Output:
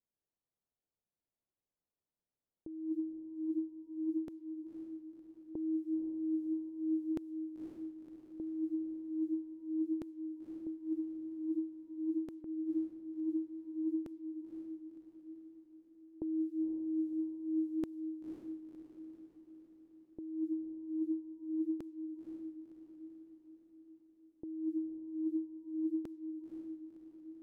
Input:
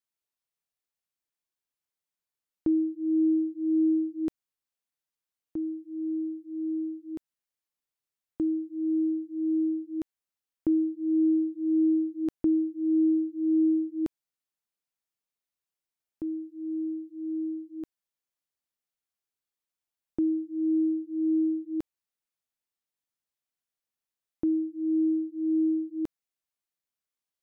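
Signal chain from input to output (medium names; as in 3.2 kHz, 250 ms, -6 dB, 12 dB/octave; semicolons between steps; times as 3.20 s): compressor with a negative ratio -36 dBFS, ratio -1; level-controlled noise filter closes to 580 Hz, open at -34 dBFS; echo that smears into a reverb 524 ms, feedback 54%, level -7 dB; trim -3 dB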